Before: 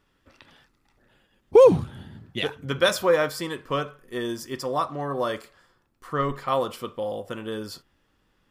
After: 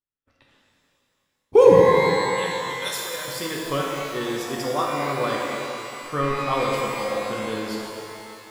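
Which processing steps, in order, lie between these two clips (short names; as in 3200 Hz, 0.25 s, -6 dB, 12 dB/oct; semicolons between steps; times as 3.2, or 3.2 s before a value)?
expander -46 dBFS; 1.8–3.28 pre-emphasis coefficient 0.9; shimmer reverb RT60 2.7 s, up +12 st, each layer -8 dB, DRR -2.5 dB; gain -1 dB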